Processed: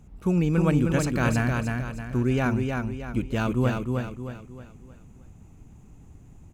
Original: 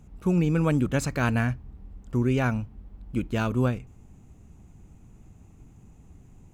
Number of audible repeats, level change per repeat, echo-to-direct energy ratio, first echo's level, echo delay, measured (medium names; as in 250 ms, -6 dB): 5, -7.5 dB, -3.0 dB, -4.0 dB, 312 ms